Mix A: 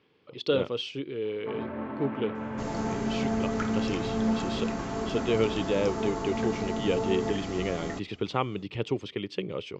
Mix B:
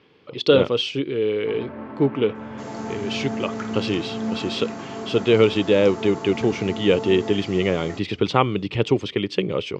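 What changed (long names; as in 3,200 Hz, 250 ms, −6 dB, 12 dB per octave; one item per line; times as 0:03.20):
speech +10.0 dB
second sound: add high-pass filter 190 Hz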